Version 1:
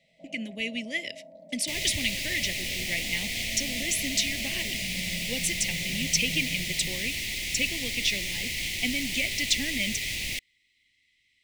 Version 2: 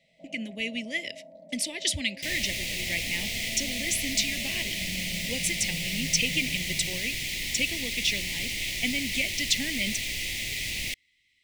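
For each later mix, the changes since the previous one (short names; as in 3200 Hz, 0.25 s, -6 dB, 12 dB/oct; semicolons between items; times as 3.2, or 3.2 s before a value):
second sound: entry +0.55 s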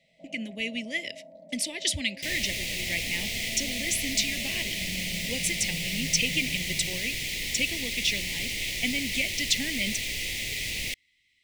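second sound: add bell 470 Hz +6 dB 0.37 oct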